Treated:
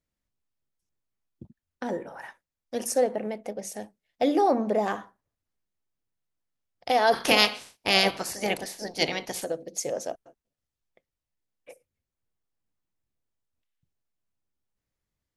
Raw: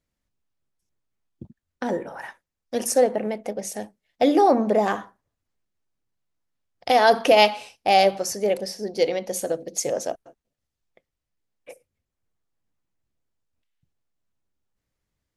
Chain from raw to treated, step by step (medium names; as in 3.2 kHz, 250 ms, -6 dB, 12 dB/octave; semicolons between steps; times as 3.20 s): 7.12–9.43 s: spectral peaks clipped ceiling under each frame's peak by 22 dB; trim -5 dB